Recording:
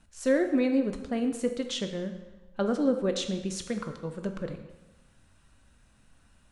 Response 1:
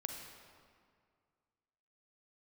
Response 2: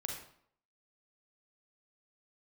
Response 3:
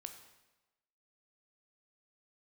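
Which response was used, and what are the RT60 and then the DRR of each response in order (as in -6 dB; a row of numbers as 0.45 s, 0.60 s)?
3; 2.1 s, 0.65 s, 1.1 s; 3.0 dB, 0.5 dB, 6.0 dB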